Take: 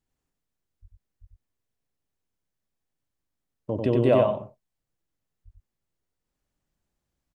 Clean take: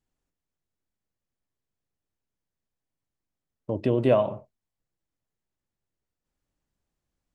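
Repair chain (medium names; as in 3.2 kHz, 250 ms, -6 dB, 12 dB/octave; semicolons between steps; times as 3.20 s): 0.81–0.93 s: high-pass 140 Hz 24 dB/octave; 1.20–1.32 s: high-pass 140 Hz 24 dB/octave; 5.44–5.56 s: high-pass 140 Hz 24 dB/octave; inverse comb 93 ms -3.5 dB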